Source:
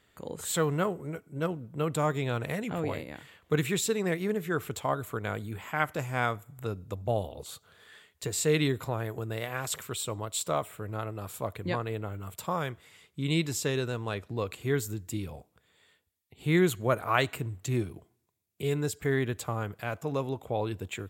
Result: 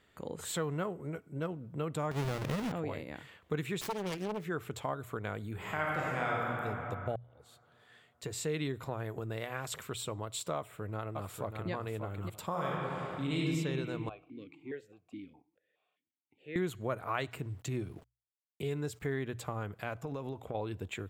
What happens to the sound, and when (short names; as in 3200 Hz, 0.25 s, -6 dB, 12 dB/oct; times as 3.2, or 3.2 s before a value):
2.11–2.72 half-waves squared off
3.81–4.45 self-modulated delay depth 0.91 ms
5.54–6.63 reverb throw, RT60 2.4 s, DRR -5.5 dB
7.16–8.82 fade in
10.56–11.7 echo throw 0.59 s, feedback 25%, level -6.5 dB
12.5–13.44 reverb throw, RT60 2.3 s, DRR -5.5 dB
14.09–16.56 vowel sequencer 4.8 Hz
17.31–19.21 sample gate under -55.5 dBFS
19.93–20.55 compressor, threshold -32 dBFS
whole clip: high shelf 5600 Hz -8 dB; notches 60/120 Hz; compressor 2:1, threshold -37 dBFS